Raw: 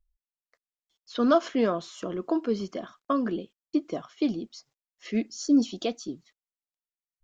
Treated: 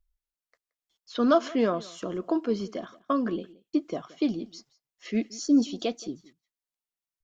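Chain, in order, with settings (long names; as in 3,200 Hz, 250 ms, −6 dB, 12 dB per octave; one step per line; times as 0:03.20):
single-tap delay 174 ms −21.5 dB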